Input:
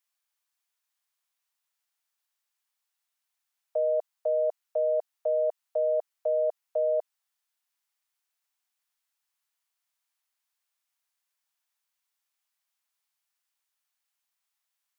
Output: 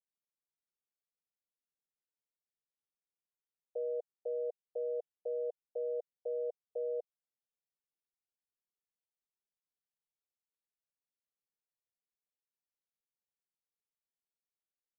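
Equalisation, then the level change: steep low-pass 680 Hz 48 dB/oct; fixed phaser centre 430 Hz, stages 8; -1.5 dB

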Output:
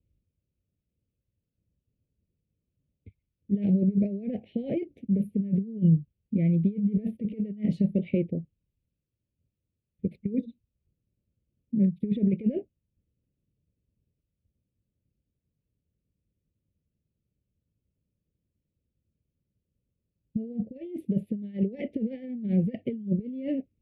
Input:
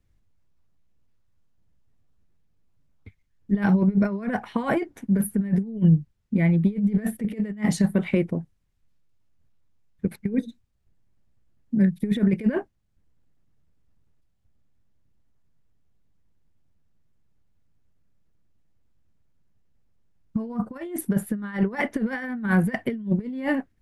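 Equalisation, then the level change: HPF 50 Hz; elliptic band-stop 560–2500 Hz, stop band 60 dB; air absorption 460 m; -2.5 dB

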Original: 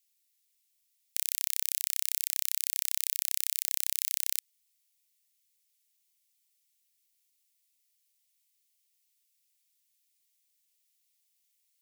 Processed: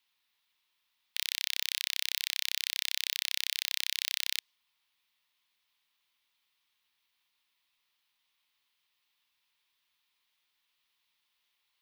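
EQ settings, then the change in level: EQ curve 690 Hz 0 dB, 1000 Hz +13 dB, 2100 Hz 0 dB, 3600 Hz 0 dB, 7300 Hz -22 dB; dynamic EQ 5600 Hz, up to +5 dB, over -60 dBFS, Q 0.96; high shelf 9100 Hz +5.5 dB; +8.5 dB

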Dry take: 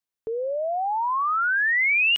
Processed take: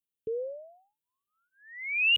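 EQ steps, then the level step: HPF 61 Hz; elliptic band-stop 490–2800 Hz, stop band 50 dB; fixed phaser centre 2200 Hz, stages 4; 0.0 dB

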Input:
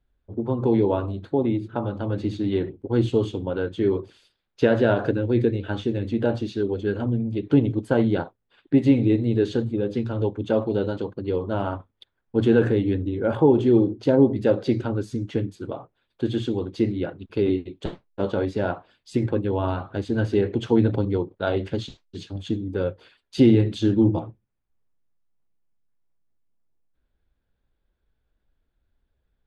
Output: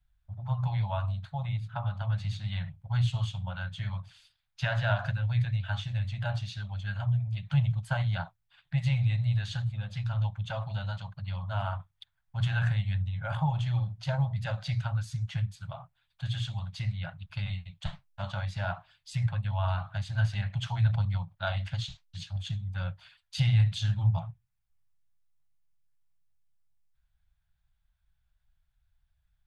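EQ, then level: inverse Chebyshev band-stop 230–480 Hz, stop band 40 dB; bell 820 Hz -5.5 dB 1.7 oct; 0.0 dB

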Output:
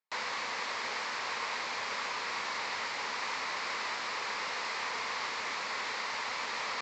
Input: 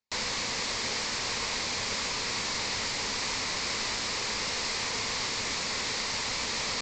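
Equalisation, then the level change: band-pass 1200 Hz, Q 0.97; +2.0 dB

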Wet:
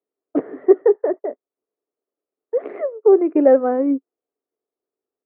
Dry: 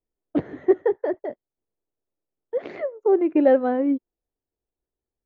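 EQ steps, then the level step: speaker cabinet 260–2400 Hz, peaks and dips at 270 Hz +6 dB, 420 Hz +7 dB, 680 Hz +4 dB, 1200 Hz +8 dB; bell 480 Hz +4.5 dB 1.2 oct; -2.5 dB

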